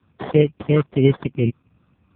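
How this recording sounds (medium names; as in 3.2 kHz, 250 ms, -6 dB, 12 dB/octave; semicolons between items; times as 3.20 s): a quantiser's noise floor 12-bit, dither none; phasing stages 4, 3.4 Hz, lowest notch 720–1500 Hz; aliases and images of a low sample rate 2.6 kHz, jitter 0%; AMR-NB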